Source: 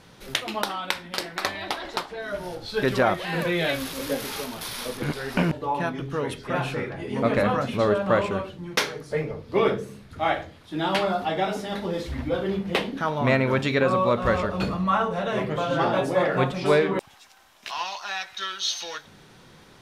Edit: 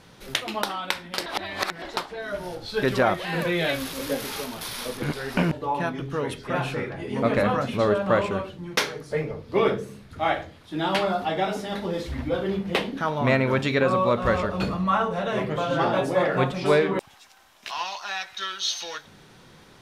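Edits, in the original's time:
0:01.26–0:01.82: reverse

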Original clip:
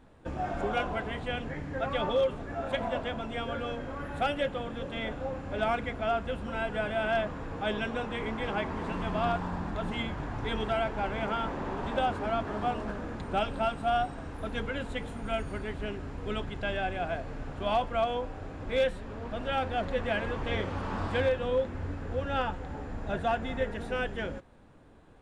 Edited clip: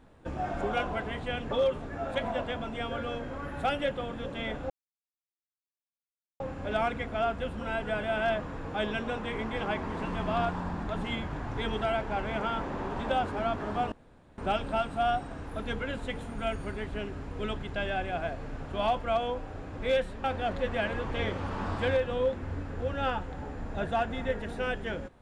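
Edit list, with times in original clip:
0:01.51–0:02.08: remove
0:05.27: splice in silence 1.70 s
0:12.79–0:13.25: fill with room tone
0:19.11–0:19.56: remove

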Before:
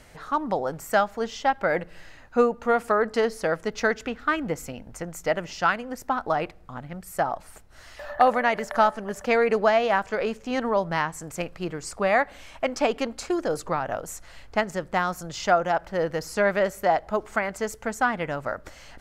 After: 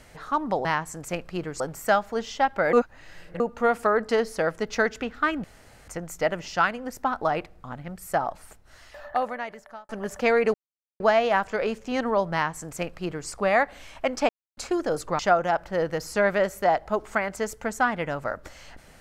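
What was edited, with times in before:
0:01.78–0:02.45: reverse
0:04.49–0:04.93: fill with room tone
0:07.34–0:08.94: fade out
0:09.59: splice in silence 0.46 s
0:10.92–0:11.87: duplicate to 0:00.65
0:12.88–0:13.16: silence
0:13.78–0:15.40: remove

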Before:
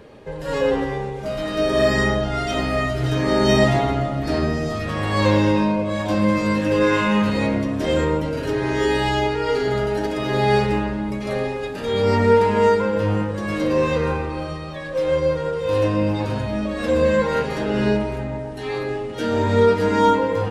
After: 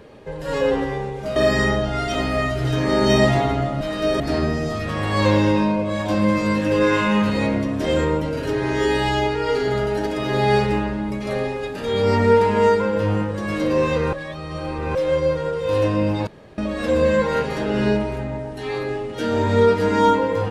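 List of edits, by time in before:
0:01.36–0:01.75: move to 0:04.20
0:14.13–0:14.95: reverse
0:16.27–0:16.58: fill with room tone

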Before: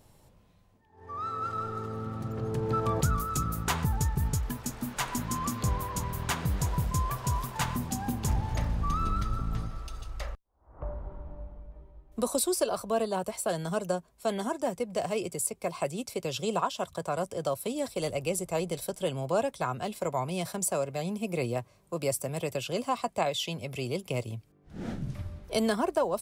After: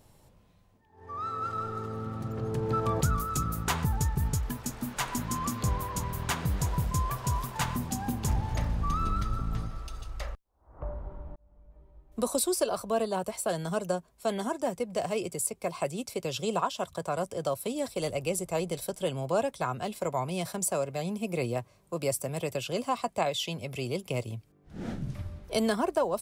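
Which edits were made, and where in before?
0:11.36–0:12.21: fade in

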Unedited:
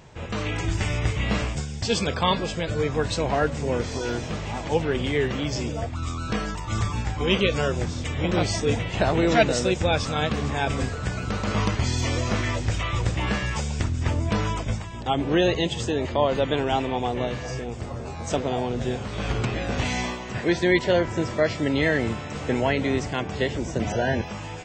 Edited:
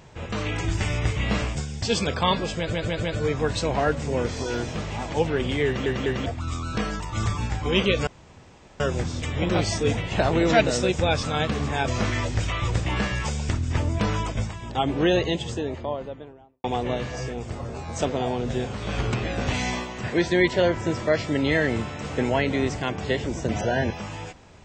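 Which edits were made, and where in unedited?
0:02.58: stutter 0.15 s, 4 plays
0:05.21: stutter in place 0.20 s, 3 plays
0:07.62: splice in room tone 0.73 s
0:10.70–0:12.19: remove
0:15.34–0:16.95: fade out and dull

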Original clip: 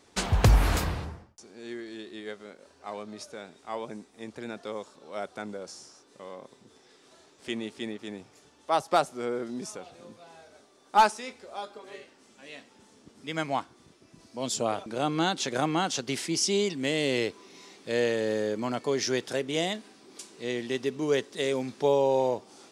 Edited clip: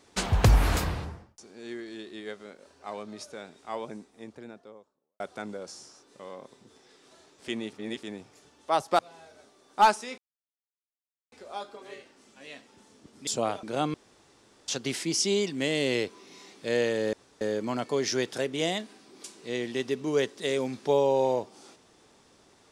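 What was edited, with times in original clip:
0:03.73–0:05.20: fade out and dull
0:07.73–0:08.03: reverse
0:08.99–0:10.15: remove
0:11.34: splice in silence 1.14 s
0:13.29–0:14.50: remove
0:15.17–0:15.91: fill with room tone
0:18.36: splice in room tone 0.28 s

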